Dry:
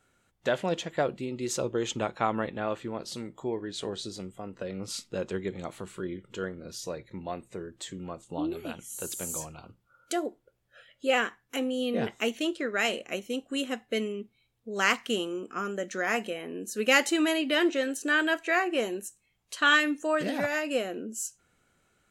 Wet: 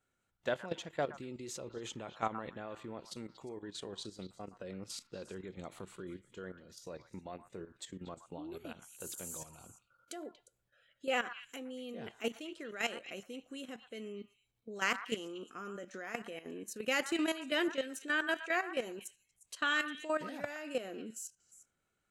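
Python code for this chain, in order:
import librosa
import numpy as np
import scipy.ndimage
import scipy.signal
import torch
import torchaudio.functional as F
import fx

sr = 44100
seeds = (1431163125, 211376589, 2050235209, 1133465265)

y = fx.level_steps(x, sr, step_db=13)
y = fx.echo_stepped(y, sr, ms=118, hz=1200.0, octaves=1.4, feedback_pct=70, wet_db=-8.5)
y = y * 10.0 ** (-5.0 / 20.0)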